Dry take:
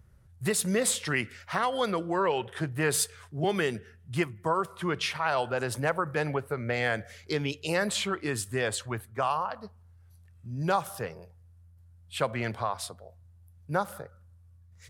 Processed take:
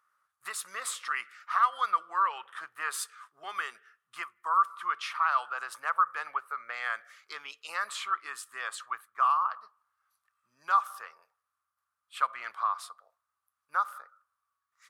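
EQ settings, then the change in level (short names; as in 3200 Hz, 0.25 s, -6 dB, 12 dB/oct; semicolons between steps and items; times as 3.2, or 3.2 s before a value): resonant high-pass 1200 Hz, resonance Q 9.6; -8.5 dB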